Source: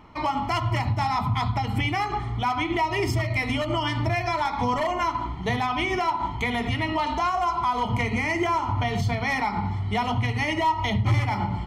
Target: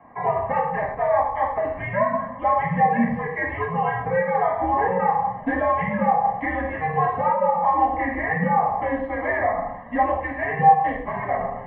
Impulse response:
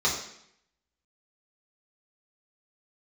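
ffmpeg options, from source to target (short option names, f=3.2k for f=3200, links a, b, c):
-filter_complex "[1:a]atrim=start_sample=2205,atrim=end_sample=6615[a];[0:a][a]afir=irnorm=-1:irlink=0,highpass=f=320:t=q:w=0.5412,highpass=f=320:t=q:w=1.307,lowpass=f=2.1k:t=q:w=0.5176,lowpass=f=2.1k:t=q:w=0.7071,lowpass=f=2.1k:t=q:w=1.932,afreqshift=-170,volume=-7.5dB"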